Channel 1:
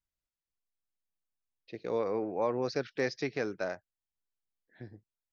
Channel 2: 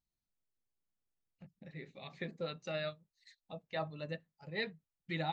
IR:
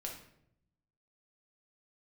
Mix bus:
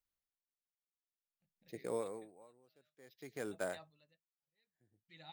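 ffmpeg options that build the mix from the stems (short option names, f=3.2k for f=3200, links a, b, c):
-filter_complex "[0:a]bandreject=f=2.6k:w=11,acrusher=samples=5:mix=1:aa=0.000001,volume=-4.5dB[a];[1:a]crystalizer=i=5.5:c=0,volume=-17.5dB[b];[a][b]amix=inputs=2:normalize=0,aeval=exprs='val(0)*pow(10,-34*(0.5-0.5*cos(2*PI*0.55*n/s))/20)':c=same"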